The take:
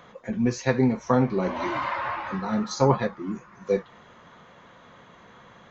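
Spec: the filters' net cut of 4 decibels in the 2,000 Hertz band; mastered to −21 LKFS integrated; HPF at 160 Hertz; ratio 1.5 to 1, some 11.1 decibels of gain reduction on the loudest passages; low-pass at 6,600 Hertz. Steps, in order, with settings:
high-pass filter 160 Hz
low-pass filter 6,600 Hz
parametric band 2,000 Hz −5 dB
downward compressor 1.5 to 1, threshold −49 dBFS
level +16 dB

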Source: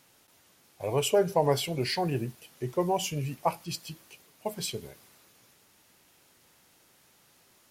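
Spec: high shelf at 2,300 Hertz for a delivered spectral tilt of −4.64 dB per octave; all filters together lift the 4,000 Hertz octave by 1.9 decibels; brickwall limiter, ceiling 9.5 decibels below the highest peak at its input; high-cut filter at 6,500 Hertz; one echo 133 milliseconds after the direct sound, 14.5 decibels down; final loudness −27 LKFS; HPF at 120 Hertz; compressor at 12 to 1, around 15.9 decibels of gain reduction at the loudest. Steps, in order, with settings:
high-pass filter 120 Hz
low-pass filter 6,500 Hz
high-shelf EQ 2,300 Hz −4.5 dB
parametric band 4,000 Hz +7.5 dB
downward compressor 12 to 1, threshold −35 dBFS
brickwall limiter −32.5 dBFS
single-tap delay 133 ms −14.5 dB
level +16.5 dB

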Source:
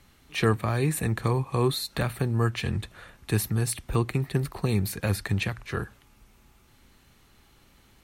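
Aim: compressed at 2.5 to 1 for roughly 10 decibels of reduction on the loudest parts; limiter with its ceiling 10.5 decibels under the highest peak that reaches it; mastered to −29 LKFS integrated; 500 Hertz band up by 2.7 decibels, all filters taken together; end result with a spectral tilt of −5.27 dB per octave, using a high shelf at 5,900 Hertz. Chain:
parametric band 500 Hz +3.5 dB
high-shelf EQ 5,900 Hz −8.5 dB
downward compressor 2.5 to 1, threshold −33 dBFS
level +11 dB
brickwall limiter −18 dBFS

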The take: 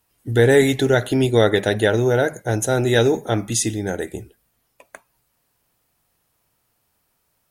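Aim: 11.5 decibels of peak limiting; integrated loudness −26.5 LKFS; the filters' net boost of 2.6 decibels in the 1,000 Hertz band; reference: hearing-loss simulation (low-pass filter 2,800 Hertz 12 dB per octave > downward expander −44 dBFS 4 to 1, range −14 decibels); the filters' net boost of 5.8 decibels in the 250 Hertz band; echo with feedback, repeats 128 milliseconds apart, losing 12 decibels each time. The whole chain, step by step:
parametric band 250 Hz +7 dB
parametric band 1,000 Hz +3.5 dB
brickwall limiter −10 dBFS
low-pass filter 2,800 Hz 12 dB per octave
repeating echo 128 ms, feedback 25%, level −12 dB
downward expander −44 dBFS 4 to 1, range −14 dB
level −6 dB

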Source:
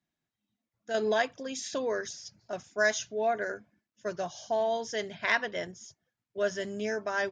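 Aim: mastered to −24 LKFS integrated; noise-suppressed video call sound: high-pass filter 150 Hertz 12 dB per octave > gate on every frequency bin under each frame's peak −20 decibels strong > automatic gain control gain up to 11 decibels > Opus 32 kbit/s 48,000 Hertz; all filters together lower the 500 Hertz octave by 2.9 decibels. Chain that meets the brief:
high-pass filter 150 Hz 12 dB per octave
parametric band 500 Hz −4 dB
gate on every frequency bin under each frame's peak −20 dB strong
automatic gain control gain up to 11 dB
level +9.5 dB
Opus 32 kbit/s 48,000 Hz

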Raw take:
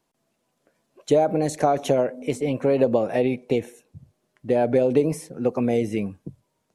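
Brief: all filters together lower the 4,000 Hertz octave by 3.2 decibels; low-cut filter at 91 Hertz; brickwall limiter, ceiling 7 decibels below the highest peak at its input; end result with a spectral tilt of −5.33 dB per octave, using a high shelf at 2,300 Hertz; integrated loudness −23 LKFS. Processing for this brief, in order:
high-pass filter 91 Hz
high-shelf EQ 2,300 Hz +3.5 dB
parametric band 4,000 Hz −8 dB
level +2 dB
brickwall limiter −11.5 dBFS

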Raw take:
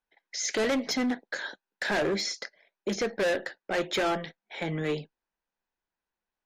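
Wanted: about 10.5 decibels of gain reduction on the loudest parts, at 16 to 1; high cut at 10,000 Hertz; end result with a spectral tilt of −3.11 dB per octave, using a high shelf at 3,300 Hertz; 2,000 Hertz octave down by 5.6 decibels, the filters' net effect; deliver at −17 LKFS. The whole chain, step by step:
low-pass filter 10,000 Hz
parametric band 2,000 Hz −8.5 dB
high-shelf EQ 3,300 Hz +5 dB
downward compressor 16 to 1, threshold −35 dBFS
level +22.5 dB

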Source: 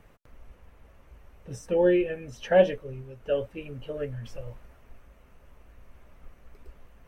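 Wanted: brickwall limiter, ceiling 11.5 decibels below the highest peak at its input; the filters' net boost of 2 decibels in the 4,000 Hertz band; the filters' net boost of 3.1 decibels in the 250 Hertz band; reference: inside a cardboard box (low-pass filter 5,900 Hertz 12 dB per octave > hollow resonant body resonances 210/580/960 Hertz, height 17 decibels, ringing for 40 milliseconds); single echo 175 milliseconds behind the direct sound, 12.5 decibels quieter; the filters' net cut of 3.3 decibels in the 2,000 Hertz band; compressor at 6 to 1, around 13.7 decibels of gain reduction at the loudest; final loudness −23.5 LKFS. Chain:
parametric band 250 Hz +6 dB
parametric band 2,000 Hz −6 dB
parametric band 4,000 Hz +7.5 dB
downward compressor 6 to 1, threshold −28 dBFS
brickwall limiter −30 dBFS
low-pass filter 5,900 Hz 12 dB per octave
single-tap delay 175 ms −12.5 dB
hollow resonant body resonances 210/580/960 Hz, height 17 dB, ringing for 40 ms
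level +6.5 dB

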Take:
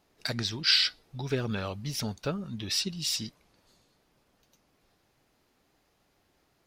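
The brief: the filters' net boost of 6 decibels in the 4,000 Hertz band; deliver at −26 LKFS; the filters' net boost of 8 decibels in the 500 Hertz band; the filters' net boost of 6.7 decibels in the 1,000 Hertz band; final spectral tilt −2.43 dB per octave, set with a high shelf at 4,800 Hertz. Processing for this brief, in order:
parametric band 500 Hz +8.5 dB
parametric band 1,000 Hz +6 dB
parametric band 4,000 Hz +4 dB
high-shelf EQ 4,800 Hz +5.5 dB
level −2.5 dB

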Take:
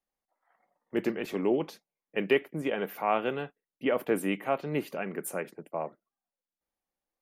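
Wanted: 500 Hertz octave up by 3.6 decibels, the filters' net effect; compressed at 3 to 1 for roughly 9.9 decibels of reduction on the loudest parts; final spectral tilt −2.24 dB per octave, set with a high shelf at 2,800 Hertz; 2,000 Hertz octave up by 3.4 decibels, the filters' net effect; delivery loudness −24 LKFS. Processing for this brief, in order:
parametric band 500 Hz +4.5 dB
parametric band 2,000 Hz +6.5 dB
high-shelf EQ 2,800 Hz −6.5 dB
downward compressor 3 to 1, threshold −29 dBFS
level +10.5 dB

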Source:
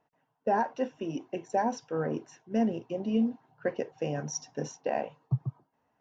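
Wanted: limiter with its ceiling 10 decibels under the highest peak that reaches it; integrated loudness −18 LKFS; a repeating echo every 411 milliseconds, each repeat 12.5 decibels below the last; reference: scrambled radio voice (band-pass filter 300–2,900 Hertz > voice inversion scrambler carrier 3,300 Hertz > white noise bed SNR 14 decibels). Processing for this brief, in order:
brickwall limiter −27 dBFS
band-pass filter 300–2,900 Hz
repeating echo 411 ms, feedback 24%, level −12.5 dB
voice inversion scrambler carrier 3,300 Hz
white noise bed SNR 14 dB
level +19 dB

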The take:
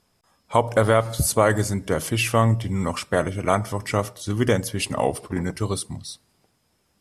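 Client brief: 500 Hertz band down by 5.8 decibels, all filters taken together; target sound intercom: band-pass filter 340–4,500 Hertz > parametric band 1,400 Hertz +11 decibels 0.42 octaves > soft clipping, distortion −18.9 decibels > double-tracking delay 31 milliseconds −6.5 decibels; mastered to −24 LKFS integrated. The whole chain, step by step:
band-pass filter 340–4,500 Hz
parametric band 500 Hz −6.5 dB
parametric band 1,400 Hz +11 dB 0.42 octaves
soft clipping −8 dBFS
double-tracking delay 31 ms −6.5 dB
level +0.5 dB

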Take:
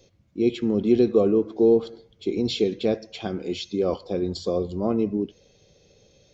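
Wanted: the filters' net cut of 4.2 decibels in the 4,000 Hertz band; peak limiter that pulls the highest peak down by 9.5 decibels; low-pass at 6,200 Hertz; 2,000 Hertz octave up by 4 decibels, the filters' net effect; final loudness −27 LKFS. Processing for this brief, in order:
low-pass filter 6,200 Hz
parametric band 2,000 Hz +8 dB
parametric band 4,000 Hz −7.5 dB
level +1 dB
brickwall limiter −16 dBFS

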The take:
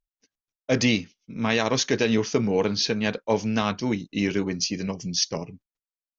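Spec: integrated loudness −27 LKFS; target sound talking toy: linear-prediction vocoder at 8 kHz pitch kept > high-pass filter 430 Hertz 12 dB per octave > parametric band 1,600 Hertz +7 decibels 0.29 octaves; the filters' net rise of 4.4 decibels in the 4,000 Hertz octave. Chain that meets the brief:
parametric band 4,000 Hz +5.5 dB
linear-prediction vocoder at 8 kHz pitch kept
high-pass filter 430 Hz 12 dB per octave
parametric band 1,600 Hz +7 dB 0.29 octaves
level +1 dB

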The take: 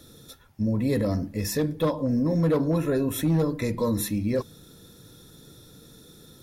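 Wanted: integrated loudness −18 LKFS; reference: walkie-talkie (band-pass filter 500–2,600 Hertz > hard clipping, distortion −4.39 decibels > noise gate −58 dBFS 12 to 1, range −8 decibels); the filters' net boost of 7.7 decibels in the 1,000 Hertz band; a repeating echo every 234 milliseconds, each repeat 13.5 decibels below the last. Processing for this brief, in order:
band-pass filter 500–2,600 Hz
parametric band 1,000 Hz +9 dB
repeating echo 234 ms, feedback 21%, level −13.5 dB
hard clipping −33 dBFS
noise gate −58 dBFS 12 to 1, range −8 dB
level +19 dB

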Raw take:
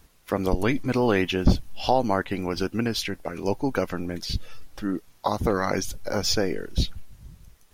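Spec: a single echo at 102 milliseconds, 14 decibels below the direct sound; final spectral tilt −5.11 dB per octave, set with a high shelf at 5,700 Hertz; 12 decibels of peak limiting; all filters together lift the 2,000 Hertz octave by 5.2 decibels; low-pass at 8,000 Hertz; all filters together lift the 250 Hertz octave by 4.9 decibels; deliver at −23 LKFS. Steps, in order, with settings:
low-pass filter 8,000 Hz
parametric band 250 Hz +6 dB
parametric band 2,000 Hz +7 dB
high-shelf EQ 5,700 Hz −3 dB
brickwall limiter −16.5 dBFS
single-tap delay 102 ms −14 dB
level +5.5 dB

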